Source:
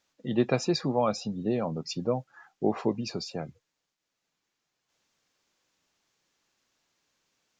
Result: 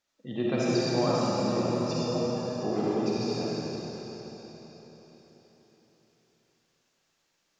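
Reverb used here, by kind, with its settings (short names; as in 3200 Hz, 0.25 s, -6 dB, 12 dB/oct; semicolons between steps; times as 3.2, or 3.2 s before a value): digital reverb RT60 4.4 s, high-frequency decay 1×, pre-delay 15 ms, DRR -8 dB; gain -7 dB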